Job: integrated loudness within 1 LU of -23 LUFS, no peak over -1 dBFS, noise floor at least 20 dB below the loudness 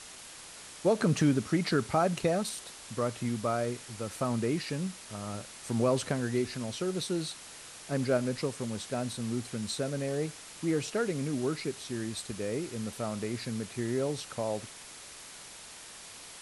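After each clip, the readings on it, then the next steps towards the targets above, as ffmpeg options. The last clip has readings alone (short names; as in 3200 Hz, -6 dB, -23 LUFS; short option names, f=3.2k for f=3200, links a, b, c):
noise floor -48 dBFS; noise floor target -53 dBFS; loudness -32.5 LUFS; peak -14.5 dBFS; loudness target -23.0 LUFS
-> -af "afftdn=nr=6:nf=-48"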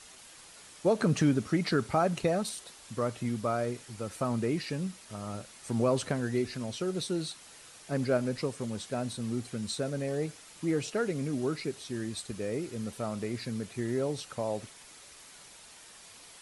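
noise floor -53 dBFS; loudness -32.5 LUFS; peak -14.5 dBFS; loudness target -23.0 LUFS
-> -af "volume=9.5dB"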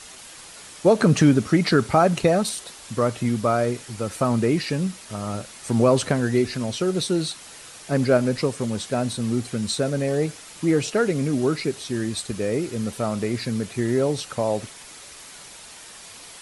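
loudness -23.0 LUFS; peak -5.0 dBFS; noise floor -43 dBFS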